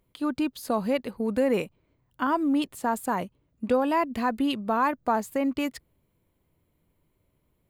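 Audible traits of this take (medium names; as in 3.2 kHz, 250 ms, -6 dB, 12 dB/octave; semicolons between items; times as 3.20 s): noise floor -73 dBFS; spectral tilt -4.0 dB/octave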